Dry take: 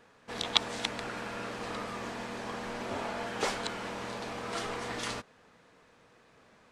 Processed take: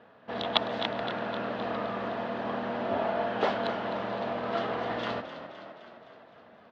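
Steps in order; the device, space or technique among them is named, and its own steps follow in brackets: frequency-shifting delay pedal into a guitar cabinet (frequency-shifting echo 0.258 s, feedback 61%, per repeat +39 Hz, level -11 dB; speaker cabinet 88–3400 Hz, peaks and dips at 220 Hz +4 dB, 650 Hz +9 dB, 2300 Hz -7 dB); gain +3 dB

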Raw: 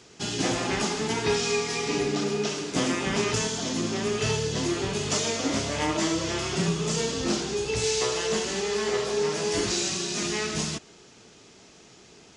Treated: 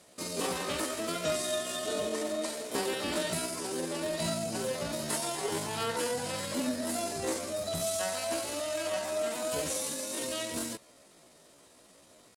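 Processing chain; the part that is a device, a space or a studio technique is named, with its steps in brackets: chipmunk voice (pitch shift +7 st); gain -6 dB

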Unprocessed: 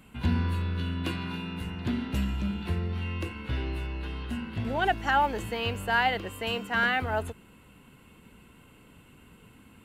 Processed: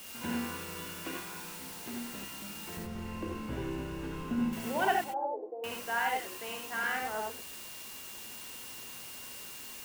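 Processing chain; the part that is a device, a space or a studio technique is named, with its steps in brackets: shortwave radio (BPF 290–2800 Hz; tremolo 0.23 Hz, depth 54%; whine 2800 Hz -51 dBFS; white noise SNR 9 dB); 2.77–4.53 tilt -4 dB/oct; 5.04–5.64 Chebyshev band-pass 320–750 Hz, order 3; non-linear reverb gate 0.11 s rising, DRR 0.5 dB; gain -3 dB

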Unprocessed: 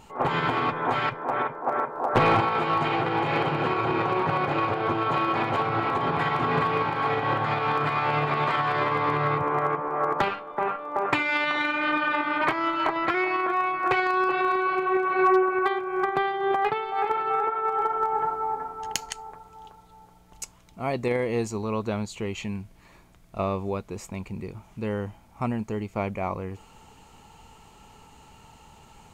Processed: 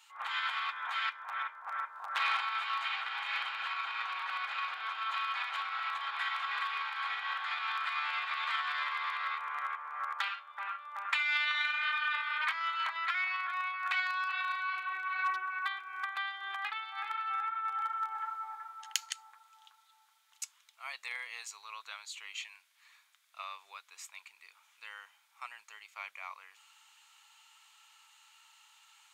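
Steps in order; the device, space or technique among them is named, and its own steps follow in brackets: headphones lying on a table (HPF 1300 Hz 24 dB/oct; bell 3600 Hz +5.5 dB 0.39 oct); gain -4.5 dB

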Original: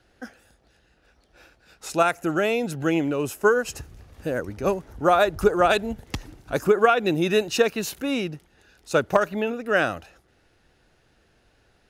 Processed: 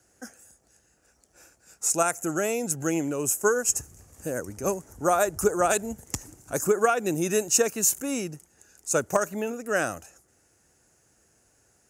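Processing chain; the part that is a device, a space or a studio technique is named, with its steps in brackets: budget condenser microphone (HPF 66 Hz; resonant high shelf 5200 Hz +12 dB, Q 3); gain -4 dB

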